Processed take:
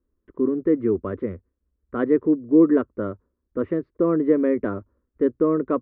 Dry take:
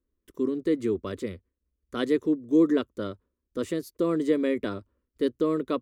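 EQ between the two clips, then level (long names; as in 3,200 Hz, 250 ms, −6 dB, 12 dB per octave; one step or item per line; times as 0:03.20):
low-pass filter 1,700 Hz 24 dB per octave
high-frequency loss of the air 110 metres
+5.5 dB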